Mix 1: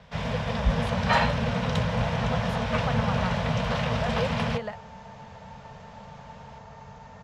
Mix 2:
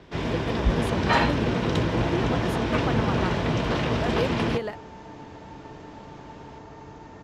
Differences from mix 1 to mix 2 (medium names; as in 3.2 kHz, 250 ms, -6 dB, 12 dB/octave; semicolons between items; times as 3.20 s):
speech: remove low-pass 3.7 kHz 6 dB/octave; master: remove Chebyshev band-stop 210–520 Hz, order 2